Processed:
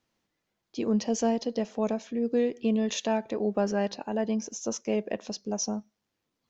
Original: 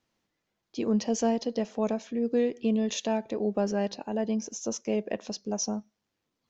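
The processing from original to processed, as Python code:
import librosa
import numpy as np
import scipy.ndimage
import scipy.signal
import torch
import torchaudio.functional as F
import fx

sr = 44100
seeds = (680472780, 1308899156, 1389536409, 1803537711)

y = fx.dynamic_eq(x, sr, hz=1400.0, q=0.85, threshold_db=-44.0, ratio=4.0, max_db=4, at=(2.62, 5.06))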